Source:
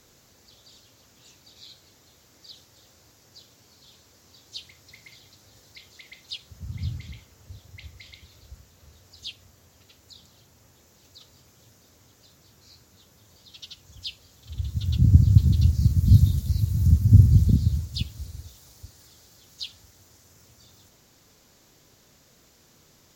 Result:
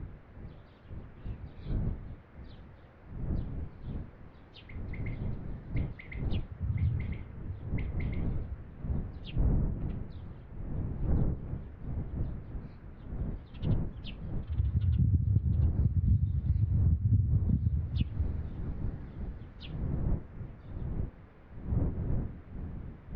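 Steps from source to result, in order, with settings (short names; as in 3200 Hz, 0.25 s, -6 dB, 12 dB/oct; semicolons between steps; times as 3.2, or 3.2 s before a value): wind noise 120 Hz -34 dBFS; LPF 2100 Hz 24 dB/oct; compressor 6:1, threshold -28 dBFS, peak gain reduction 19 dB; gain +3.5 dB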